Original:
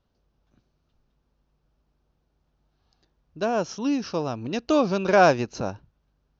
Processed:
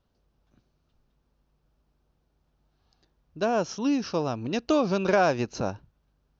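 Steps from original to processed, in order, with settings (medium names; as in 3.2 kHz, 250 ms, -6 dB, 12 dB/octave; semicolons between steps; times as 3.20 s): compression, threshold -18 dBFS, peak gain reduction 6.5 dB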